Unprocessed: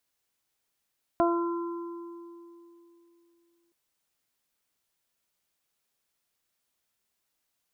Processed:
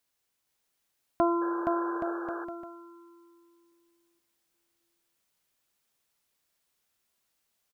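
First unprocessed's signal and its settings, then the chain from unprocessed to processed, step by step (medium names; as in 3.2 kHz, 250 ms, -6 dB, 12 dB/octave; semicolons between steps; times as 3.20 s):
additive tone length 2.52 s, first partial 341 Hz, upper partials 3/-4/-10.5 dB, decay 3.16 s, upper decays 0.44/2.33/1.57 s, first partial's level -23 dB
on a send: bouncing-ball echo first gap 470 ms, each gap 0.75×, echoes 5; on the sum: painted sound noise, 1.41–2.45 s, 310–1700 Hz -41 dBFS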